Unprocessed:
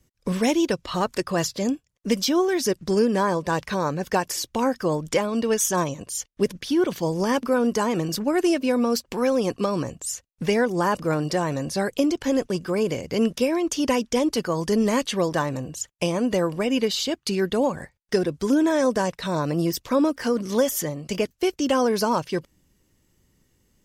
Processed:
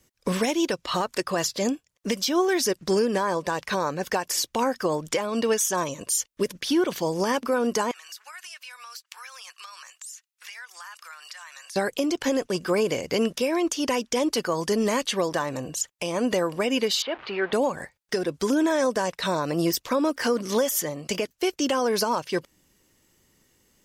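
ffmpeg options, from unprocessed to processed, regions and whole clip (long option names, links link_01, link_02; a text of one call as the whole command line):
ffmpeg -i in.wav -filter_complex "[0:a]asettb=1/sr,asplit=3[link_01][link_02][link_03];[link_01]atrim=end=5.834[link_04];[link_02]atrim=start=5.83:end=6.61,asetpts=PTS-STARTPTS,afade=type=in:duration=0.004:curve=qsin,afade=type=out:start_time=0.776:duration=0.004:curve=qsin,asuperstop=centerf=760:order=4:qfactor=5.7,highshelf=frequency=8000:gain=5[link_05];[link_03]atrim=start=6.606[link_06];[link_04][link_05]acrossfade=duration=0.004:curve1=hsin:curve2=qsin[link_07];[link_07][link_06]acrossfade=duration=0.004:curve1=qsin:curve2=hsin,asettb=1/sr,asplit=3[link_08][link_09][link_10];[link_08]atrim=end=7.914[link_11];[link_09]atrim=start=7.91:end=11.76,asetpts=PTS-STARTPTS,afade=type=in:duration=0.004:curve=qsin,afade=type=out:start_time=3.846:duration=0.004:curve=qsin,highpass=frequency=1300:width=0.5412,highpass=frequency=1300:width=1.3066,acompressor=threshold=-46dB:ratio=4:attack=3.2:release=140:knee=1:detection=peak[link_12];[link_10]atrim=start=11.756[link_13];[link_11][link_12]acrossfade=duration=0.004:curve1=hsin:curve2=qsin[link_14];[link_14][link_13]acrossfade=duration=0.004:curve1=qsin:curve2=hsin,asettb=1/sr,asplit=3[link_15][link_16][link_17];[link_15]atrim=end=17.024[link_18];[link_16]atrim=start=17.02:end=17.53,asetpts=PTS-STARTPTS,afade=type=in:duration=0.004:curve=qsin,afade=type=out:start_time=0.506:duration=0.004:curve=qsin,aeval=exprs='val(0)+0.5*0.0211*sgn(val(0))':channel_layout=same,lowpass=frequency=3900:width=0.5412,lowpass=frequency=3900:width=1.3066,acrossover=split=440 2700:gain=0.178 1 0.141[link_19][link_20][link_21];[link_19][link_20][link_21]amix=inputs=3:normalize=0[link_22];[link_17]atrim=start=17.526[link_23];[link_18][link_22]acrossfade=duration=0.004:curve1=hsin:curve2=qsin[link_24];[link_24][link_23]acrossfade=duration=0.004:curve1=qsin:curve2=hsin,lowshelf=frequency=240:gain=-12,alimiter=limit=-20dB:level=0:latency=1:release=293,volume=5.5dB" out.wav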